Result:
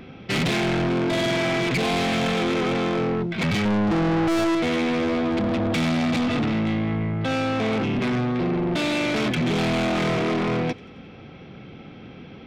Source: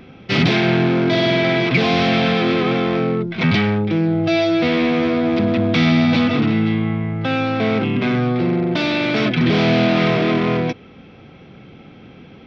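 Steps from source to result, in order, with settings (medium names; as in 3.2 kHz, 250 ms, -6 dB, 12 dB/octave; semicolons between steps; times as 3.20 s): 3.65–4.55 s: peaking EQ 230 Hz +14.5 dB 2.6 oct; saturation -20 dBFS, distortion -3 dB; feedback echo behind a high-pass 89 ms, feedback 64%, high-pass 2.1 kHz, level -21 dB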